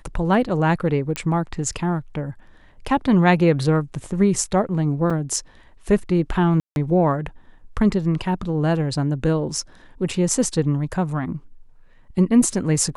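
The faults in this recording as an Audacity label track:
1.160000	1.160000	pop -10 dBFS
5.100000	5.100000	dropout 4.5 ms
6.600000	6.760000	dropout 161 ms

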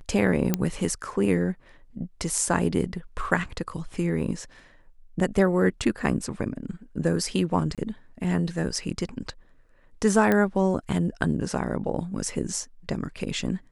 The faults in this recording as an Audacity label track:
0.540000	0.540000	pop -8 dBFS
7.750000	7.780000	dropout 27 ms
10.320000	10.320000	pop -11 dBFS

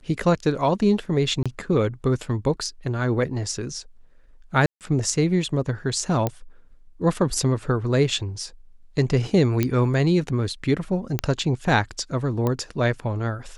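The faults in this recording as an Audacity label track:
1.430000	1.460000	dropout 26 ms
4.660000	4.810000	dropout 148 ms
6.270000	6.270000	pop -10 dBFS
9.630000	9.630000	pop -8 dBFS
11.190000	11.190000	pop -7 dBFS
12.470000	12.470000	pop -12 dBFS

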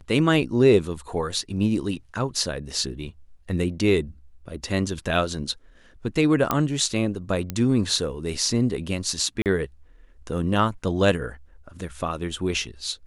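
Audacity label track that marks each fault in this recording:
6.510000	6.510000	pop -7 dBFS
7.500000	7.500000	pop -13 dBFS
9.420000	9.460000	dropout 38 ms

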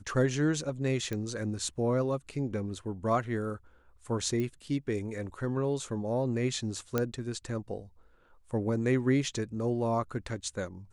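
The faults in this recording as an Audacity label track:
1.130000	1.130000	pop -21 dBFS
4.400000	4.400000	pop -22 dBFS
6.980000	6.980000	pop -14 dBFS

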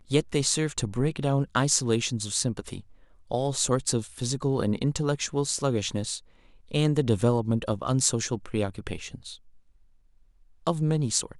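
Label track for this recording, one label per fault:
7.210000	7.210000	dropout 4.1 ms

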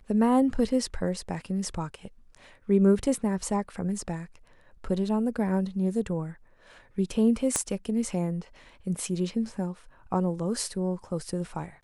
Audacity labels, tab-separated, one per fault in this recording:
7.560000	7.560000	pop -11 dBFS

